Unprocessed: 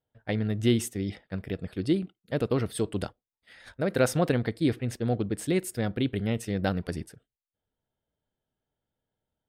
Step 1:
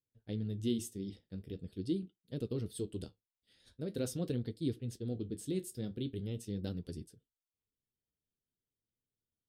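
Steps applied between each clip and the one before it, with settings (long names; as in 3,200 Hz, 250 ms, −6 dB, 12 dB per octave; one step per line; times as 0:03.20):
flat-topped bell 1,200 Hz −15 dB 2.3 octaves
flanger 0.44 Hz, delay 7.2 ms, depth 8.8 ms, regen −52%
level −5.5 dB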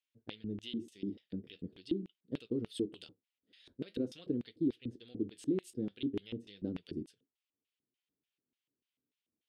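downward compressor, threshold −37 dBFS, peak gain reduction 9 dB
auto-filter band-pass square 3.4 Hz 300–2,800 Hz
level +11.5 dB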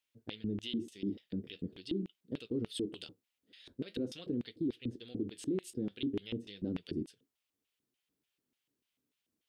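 brickwall limiter −32 dBFS, peak gain reduction 9.5 dB
level +5 dB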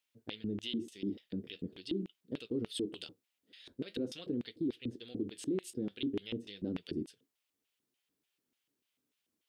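low-shelf EQ 180 Hz −6 dB
level +1.5 dB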